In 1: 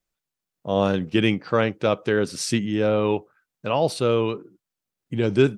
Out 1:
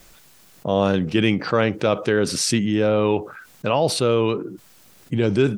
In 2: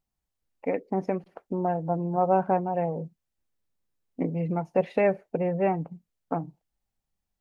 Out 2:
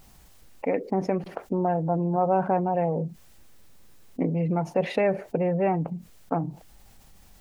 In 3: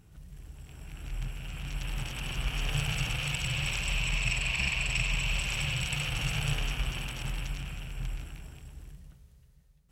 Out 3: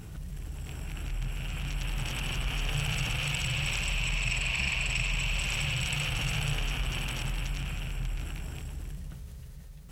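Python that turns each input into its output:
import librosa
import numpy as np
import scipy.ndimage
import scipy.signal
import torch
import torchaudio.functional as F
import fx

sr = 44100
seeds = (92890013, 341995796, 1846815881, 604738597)

y = fx.env_flatten(x, sr, amount_pct=50)
y = y * 10.0 ** (-1.5 / 20.0)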